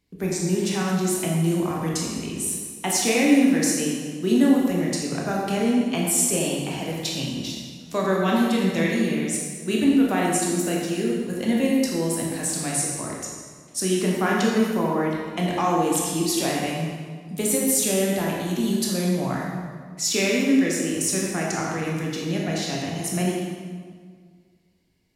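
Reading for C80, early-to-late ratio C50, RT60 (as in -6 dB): 2.0 dB, 0.0 dB, 1.8 s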